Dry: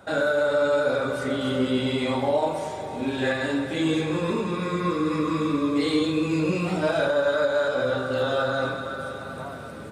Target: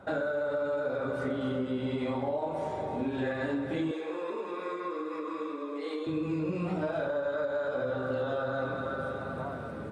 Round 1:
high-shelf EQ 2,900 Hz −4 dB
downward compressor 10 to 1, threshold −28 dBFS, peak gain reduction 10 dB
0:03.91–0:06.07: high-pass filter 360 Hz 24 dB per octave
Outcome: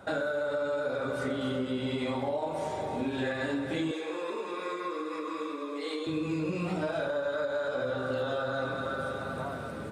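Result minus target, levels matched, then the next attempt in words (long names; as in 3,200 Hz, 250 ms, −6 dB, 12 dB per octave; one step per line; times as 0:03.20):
8,000 Hz band +9.5 dB
high-shelf EQ 2,900 Hz −16 dB
downward compressor 10 to 1, threshold −28 dBFS, peak gain reduction 9.5 dB
0:03.91–0:06.07: high-pass filter 360 Hz 24 dB per octave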